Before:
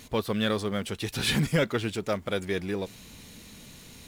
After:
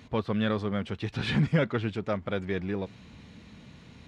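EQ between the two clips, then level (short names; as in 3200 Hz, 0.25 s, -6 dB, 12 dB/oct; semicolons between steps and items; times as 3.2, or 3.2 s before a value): HPF 65 Hz; tape spacing loss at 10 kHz 30 dB; bell 410 Hz -4.5 dB 1.7 oct; +3.5 dB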